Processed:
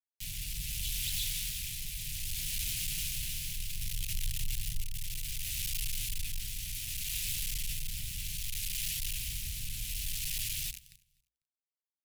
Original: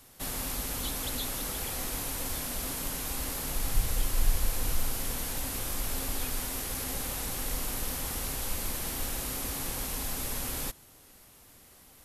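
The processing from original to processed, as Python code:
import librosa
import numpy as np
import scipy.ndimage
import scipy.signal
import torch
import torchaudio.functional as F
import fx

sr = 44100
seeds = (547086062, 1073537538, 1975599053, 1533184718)

y = fx.high_shelf(x, sr, hz=3300.0, db=-12.0)
y = fx.rev_schroeder(y, sr, rt60_s=3.2, comb_ms=27, drr_db=8.0)
y = fx.quant_companded(y, sr, bits=2)
y = scipy.signal.sosfilt(scipy.signal.ellip(3, 1.0, 60, [140.0, 2600.0], 'bandstop', fs=sr, output='sos'), y)
y = fx.low_shelf(y, sr, hz=480.0, db=-6.5)
y = fx.hum_notches(y, sr, base_hz=60, count=5)
y = fx.echo_feedback(y, sr, ms=248, feedback_pct=19, wet_db=-22.0)
y = fx.rotary(y, sr, hz=0.65)
y = fx.echo_crushed(y, sr, ms=310, feedback_pct=35, bits=12, wet_db=-5.0, at=(2.67, 4.84))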